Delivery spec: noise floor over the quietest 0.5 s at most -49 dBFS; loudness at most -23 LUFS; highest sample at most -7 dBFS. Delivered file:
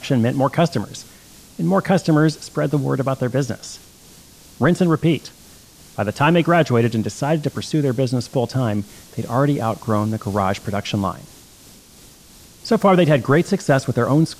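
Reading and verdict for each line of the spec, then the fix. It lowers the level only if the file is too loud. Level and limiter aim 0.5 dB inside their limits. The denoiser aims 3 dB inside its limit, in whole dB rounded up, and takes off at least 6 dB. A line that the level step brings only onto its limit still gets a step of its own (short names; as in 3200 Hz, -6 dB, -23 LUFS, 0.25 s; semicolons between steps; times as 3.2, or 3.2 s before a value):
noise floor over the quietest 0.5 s -46 dBFS: fail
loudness -19.0 LUFS: fail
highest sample -5.5 dBFS: fail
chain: gain -4.5 dB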